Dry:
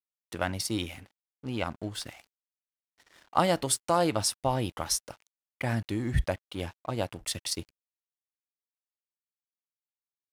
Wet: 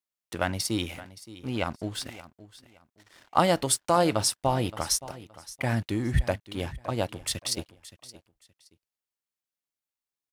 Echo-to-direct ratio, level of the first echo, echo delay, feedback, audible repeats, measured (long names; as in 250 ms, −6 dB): −17.0 dB, −17.0 dB, 571 ms, 24%, 2